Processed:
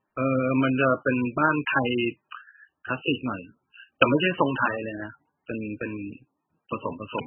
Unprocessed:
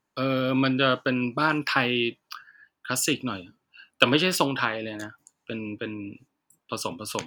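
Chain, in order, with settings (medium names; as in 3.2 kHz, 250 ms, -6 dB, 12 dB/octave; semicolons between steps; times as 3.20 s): trim +1.5 dB; MP3 8 kbps 22.05 kHz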